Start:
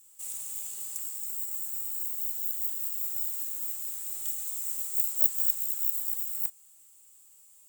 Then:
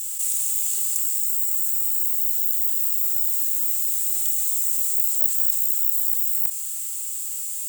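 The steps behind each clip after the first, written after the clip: passive tone stack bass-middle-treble 5-5-5; fast leveller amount 70%; gain +7 dB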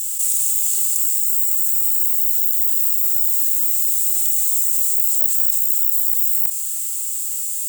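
in parallel at 0 dB: limiter -12.5 dBFS, peak gain reduction 9 dB; on the sum: high shelf 2100 Hz +8 dB; gain -8.5 dB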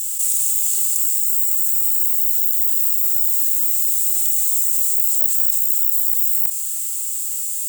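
nothing audible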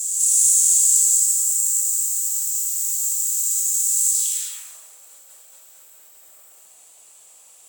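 band-pass sweep 6700 Hz -> 550 Hz, 4.1–4.68; non-linear reverb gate 0.32 s flat, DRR -4.5 dB; gain +4.5 dB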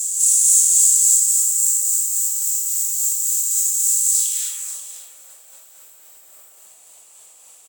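tremolo 3.6 Hz, depth 29%; echo 0.537 s -12.5 dB; gain +3 dB

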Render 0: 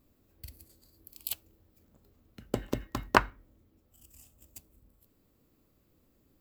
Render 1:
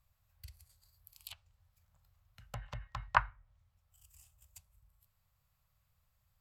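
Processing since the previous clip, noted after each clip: treble ducked by the level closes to 2200 Hz, closed at -32 dBFS; Chebyshev band-stop 110–910 Hz, order 2; gain -3.5 dB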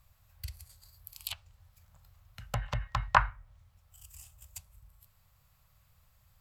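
maximiser +15.5 dB; gain -5 dB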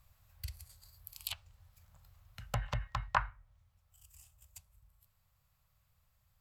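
vocal rider within 4 dB 0.5 s; gain -4 dB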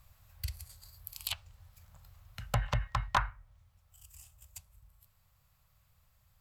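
hard clip -24 dBFS, distortion -11 dB; gain +5 dB

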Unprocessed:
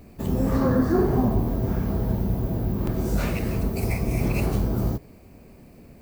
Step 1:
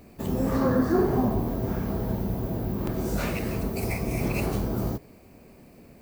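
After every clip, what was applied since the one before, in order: low shelf 150 Hz -7.5 dB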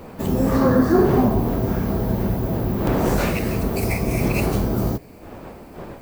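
wind noise 600 Hz -39 dBFS; gain +6.5 dB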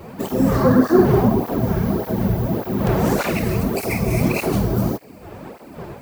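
tape flanging out of phase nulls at 1.7 Hz, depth 4.3 ms; gain +4.5 dB

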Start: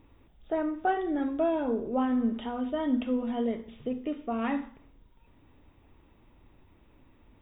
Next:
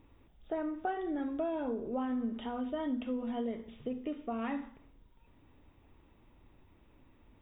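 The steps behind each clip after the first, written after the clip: compressor 2.5:1, threshold -30 dBFS, peak gain reduction 6 dB; gain -3 dB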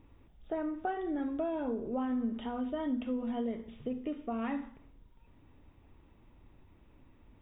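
tone controls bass +3 dB, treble -4 dB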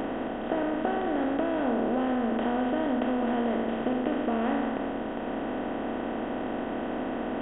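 per-bin compression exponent 0.2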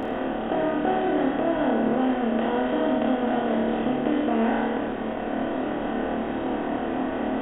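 flutter echo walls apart 4.6 m, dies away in 0.52 s; gain +1.5 dB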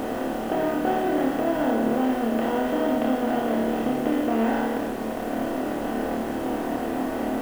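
level-crossing sampler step -38 dBFS

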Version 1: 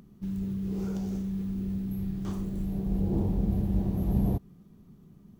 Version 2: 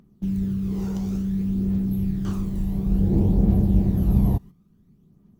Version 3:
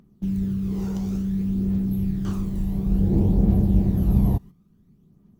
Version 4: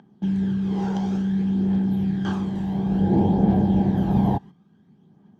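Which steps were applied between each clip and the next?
phaser 0.57 Hz, delay 1.1 ms, feedback 40%; gate -40 dBFS, range -11 dB; gain +4.5 dB
nothing audible
BPF 160–4900 Hz; small resonant body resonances 830/1600/3200 Hz, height 14 dB, ringing for 25 ms; gain +4 dB

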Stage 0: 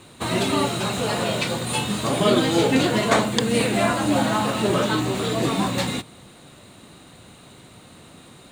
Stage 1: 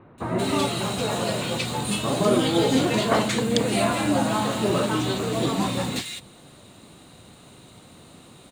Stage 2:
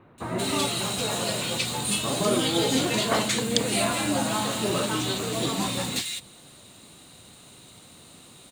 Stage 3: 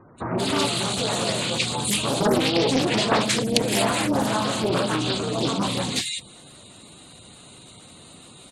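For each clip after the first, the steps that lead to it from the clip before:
bands offset in time lows, highs 0.18 s, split 1800 Hz; gain -1.5 dB
high shelf 2500 Hz +9.5 dB; gain -4.5 dB
spectral gate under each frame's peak -20 dB strong; Doppler distortion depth 0.58 ms; gain +4 dB

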